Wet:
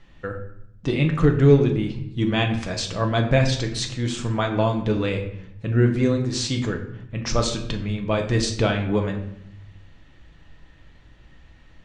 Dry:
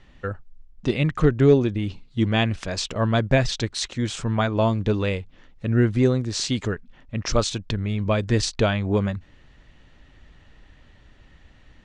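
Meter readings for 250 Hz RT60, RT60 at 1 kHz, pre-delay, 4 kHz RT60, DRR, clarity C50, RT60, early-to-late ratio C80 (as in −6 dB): 1.0 s, 0.70 s, 6 ms, 0.55 s, 2.5 dB, 8.5 dB, 0.75 s, 11.0 dB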